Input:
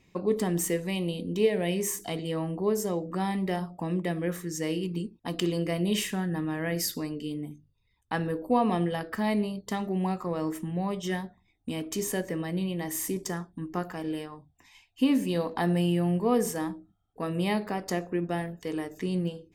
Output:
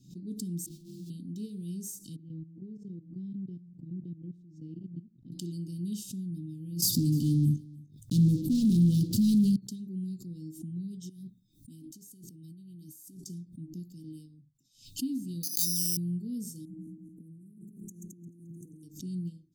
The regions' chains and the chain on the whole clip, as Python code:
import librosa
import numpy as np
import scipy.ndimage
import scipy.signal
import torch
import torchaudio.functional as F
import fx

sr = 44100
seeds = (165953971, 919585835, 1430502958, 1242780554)

y = fx.chain(x, sr, fx.sample_sort(block=128),
    fx.high_shelf(hz=2900.0, db=-10.0),
    fx.ensemble(), at=(0.66, 1.1))
y = fx.chain(y, sr, fx.peak_eq(hz=85.0, db=7.5, octaves=0.41),
    fx.level_steps(step_db=15),
    fx.lowpass_res(hz=1500.0, q=2.1), at=(2.16, 5.32))
y = fx.chain(y, sr, fx.peak_eq(hz=100.0, db=13.5, octaves=0.92),
    fx.leveller(passes=5),
    fx.echo_single(ms=302, db=-23.0), at=(6.82, 9.56))
y = fx.chain(y, sr, fx.high_shelf(hz=9600.0, db=8.5),
    fx.over_compress(threshold_db=-40.0, ratio=-1.0), at=(11.09, 13.24))
y = fx.chain(y, sr, fx.tilt_shelf(db=-7.5, hz=750.0),
    fx.resample_bad(factor=8, down='none', up='zero_stuff'), at=(15.43, 15.97))
y = fx.chain(y, sr, fx.reverse_delay_fb(ms=109, feedback_pct=66, wet_db=-6.0),
    fx.brickwall_bandstop(low_hz=900.0, high_hz=5800.0),
    fx.over_compress(threshold_db=-39.0, ratio=-1.0), at=(16.65, 18.83))
y = scipy.signal.sosfilt(scipy.signal.cheby2(4, 50, [590.0, 2100.0], 'bandstop', fs=sr, output='sos'), y)
y = fx.low_shelf_res(y, sr, hz=100.0, db=-8.5, q=3.0)
y = fx.pre_swell(y, sr, db_per_s=130.0)
y = F.gain(torch.from_numpy(y), -9.0).numpy()